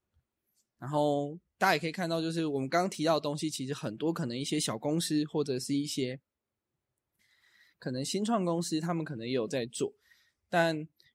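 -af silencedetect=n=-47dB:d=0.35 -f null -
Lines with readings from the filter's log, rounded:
silence_start: 0.00
silence_end: 0.82 | silence_duration: 0.82
silence_start: 6.17
silence_end: 7.82 | silence_duration: 1.65
silence_start: 9.90
silence_end: 10.52 | silence_duration: 0.63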